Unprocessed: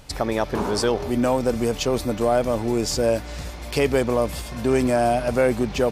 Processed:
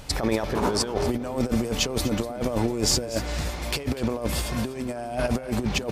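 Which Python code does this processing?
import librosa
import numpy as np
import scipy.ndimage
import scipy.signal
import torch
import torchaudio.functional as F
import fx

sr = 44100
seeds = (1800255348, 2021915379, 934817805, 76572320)

y = fx.over_compress(x, sr, threshold_db=-25.0, ratio=-0.5)
y = y + 10.0 ** (-15.5 / 20.0) * np.pad(y, (int(244 * sr / 1000.0), 0))[:len(y)]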